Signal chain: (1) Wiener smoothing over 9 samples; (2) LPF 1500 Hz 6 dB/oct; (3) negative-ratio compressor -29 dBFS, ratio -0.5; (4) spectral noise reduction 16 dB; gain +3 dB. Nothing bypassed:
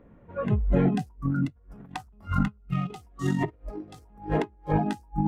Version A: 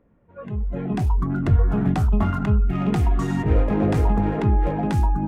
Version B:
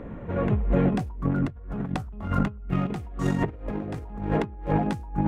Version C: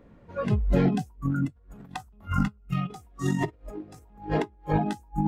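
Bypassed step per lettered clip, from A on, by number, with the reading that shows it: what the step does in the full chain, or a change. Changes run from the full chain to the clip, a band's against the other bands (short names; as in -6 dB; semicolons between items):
3, crest factor change -7.0 dB; 4, momentary loudness spread change -8 LU; 1, 8 kHz band +3.5 dB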